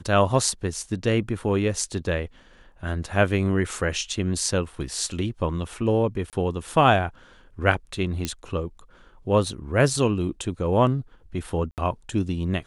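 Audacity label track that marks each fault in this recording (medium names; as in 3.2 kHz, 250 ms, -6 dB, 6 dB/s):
6.300000	6.330000	dropout 28 ms
8.250000	8.250000	pop -11 dBFS
11.710000	11.780000	dropout 68 ms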